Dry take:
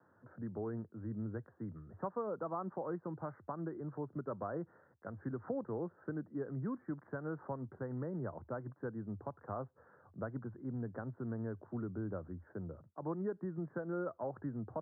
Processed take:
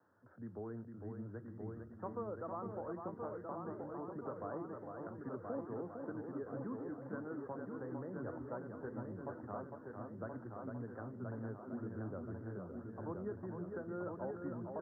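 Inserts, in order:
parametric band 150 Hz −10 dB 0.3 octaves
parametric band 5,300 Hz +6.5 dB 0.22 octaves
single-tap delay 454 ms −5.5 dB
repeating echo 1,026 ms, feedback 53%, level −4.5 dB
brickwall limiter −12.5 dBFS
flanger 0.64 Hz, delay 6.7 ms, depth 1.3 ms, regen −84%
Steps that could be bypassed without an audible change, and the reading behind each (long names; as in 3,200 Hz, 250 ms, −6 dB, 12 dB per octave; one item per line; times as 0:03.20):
parametric band 5,300 Hz: nothing at its input above 1,700 Hz
brickwall limiter −12.5 dBFS: peak of its input −25.5 dBFS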